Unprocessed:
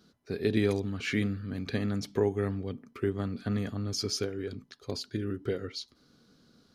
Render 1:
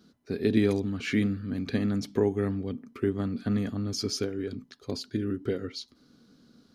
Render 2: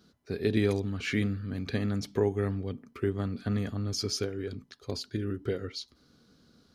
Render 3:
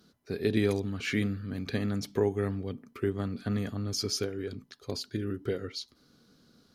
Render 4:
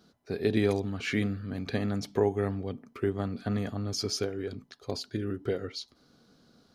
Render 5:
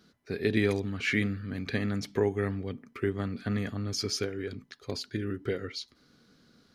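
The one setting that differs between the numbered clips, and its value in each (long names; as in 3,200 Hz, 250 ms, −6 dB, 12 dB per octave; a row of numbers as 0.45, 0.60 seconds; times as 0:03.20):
parametric band, centre frequency: 250, 66, 15,000, 730, 2,000 Hertz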